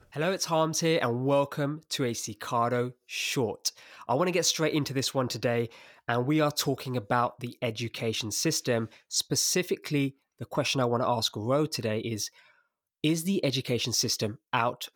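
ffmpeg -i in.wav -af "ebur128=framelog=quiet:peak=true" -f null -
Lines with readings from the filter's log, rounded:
Integrated loudness:
  I:         -28.5 LUFS
  Threshold: -38.7 LUFS
Loudness range:
  LRA:         1.5 LU
  Threshold: -48.9 LUFS
  LRA low:   -29.6 LUFS
  LRA high:  -28.1 LUFS
True peak:
  Peak:      -10.3 dBFS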